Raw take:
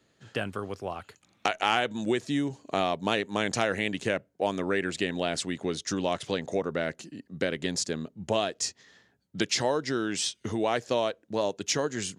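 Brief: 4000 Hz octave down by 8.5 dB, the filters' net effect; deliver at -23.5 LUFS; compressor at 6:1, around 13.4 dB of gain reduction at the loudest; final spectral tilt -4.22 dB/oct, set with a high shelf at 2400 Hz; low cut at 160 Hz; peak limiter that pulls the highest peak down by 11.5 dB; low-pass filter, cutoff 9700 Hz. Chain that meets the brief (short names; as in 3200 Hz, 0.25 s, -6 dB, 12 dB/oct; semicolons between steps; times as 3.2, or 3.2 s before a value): HPF 160 Hz; LPF 9700 Hz; high shelf 2400 Hz -6.5 dB; bell 4000 Hz -5.5 dB; compressor 6:1, threshold -38 dBFS; gain +21 dB; limiter -11 dBFS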